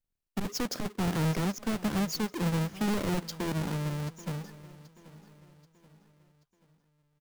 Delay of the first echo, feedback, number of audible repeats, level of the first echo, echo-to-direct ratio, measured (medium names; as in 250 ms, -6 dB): 782 ms, 44%, 3, -18.0 dB, -17.0 dB